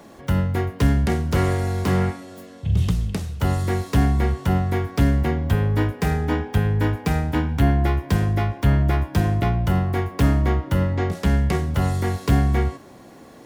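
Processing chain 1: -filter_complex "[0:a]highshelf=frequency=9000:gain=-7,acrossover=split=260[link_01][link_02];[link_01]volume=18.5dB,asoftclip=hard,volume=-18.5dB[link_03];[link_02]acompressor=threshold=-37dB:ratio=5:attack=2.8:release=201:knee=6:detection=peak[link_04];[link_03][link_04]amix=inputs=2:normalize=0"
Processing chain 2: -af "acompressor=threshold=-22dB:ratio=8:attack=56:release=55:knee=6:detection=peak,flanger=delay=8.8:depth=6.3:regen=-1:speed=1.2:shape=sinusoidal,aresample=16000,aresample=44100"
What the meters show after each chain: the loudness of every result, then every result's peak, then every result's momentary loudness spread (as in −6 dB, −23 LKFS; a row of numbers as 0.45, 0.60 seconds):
−24.5, −26.5 LKFS; −16.0, −11.0 dBFS; 3, 4 LU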